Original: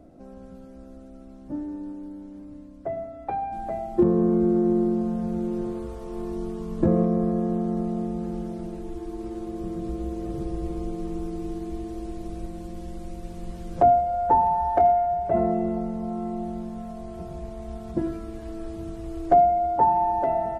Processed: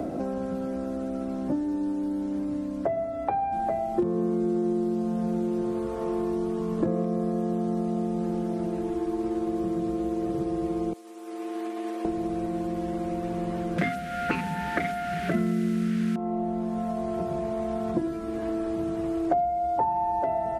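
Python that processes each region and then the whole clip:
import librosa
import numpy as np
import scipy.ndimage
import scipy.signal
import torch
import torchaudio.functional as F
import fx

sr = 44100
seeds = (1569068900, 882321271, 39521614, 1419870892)

y = fx.chain(x, sr, fx.level_steps(step_db=23),
    fx.steep_highpass(hz=220.0, slope=72),
    fx.tilt_eq(slope=4.5), at=(10.93, 12.05))
y = fx.chain(y, sr, fx.delta_mod(bps=64000, step_db=-37.0),
    fx.curve_eq(hz=(120.0, 180.0, 460.0, 860.0, 1400.0), db=(0, 12, -4, -19, 11)), at=(13.78, 16.16))
y = fx.highpass(y, sr, hz=170.0, slope=6)
y = fx.band_squash(y, sr, depth_pct=100)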